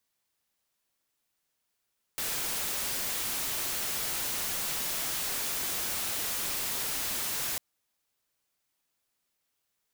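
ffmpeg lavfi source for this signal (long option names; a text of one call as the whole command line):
ffmpeg -f lavfi -i "anoisesrc=color=white:amplitude=0.0411:duration=5.4:sample_rate=44100:seed=1" out.wav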